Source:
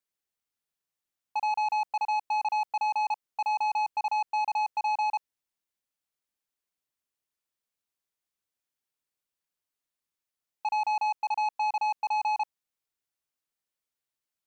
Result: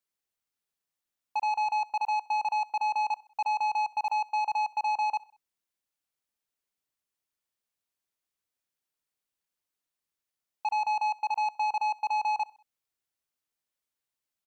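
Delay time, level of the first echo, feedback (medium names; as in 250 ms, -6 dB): 64 ms, -22.0 dB, 49%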